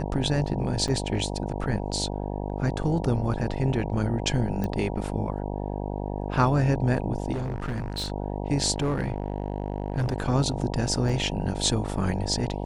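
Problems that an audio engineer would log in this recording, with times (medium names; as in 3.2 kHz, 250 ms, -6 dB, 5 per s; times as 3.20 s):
buzz 50 Hz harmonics 19 -31 dBFS
0.88–0.89 s: dropout 6.2 ms
4.64 s: pop -17 dBFS
7.32–8.12 s: clipped -26 dBFS
8.72–10.18 s: clipped -21 dBFS
11.09 s: dropout 4.1 ms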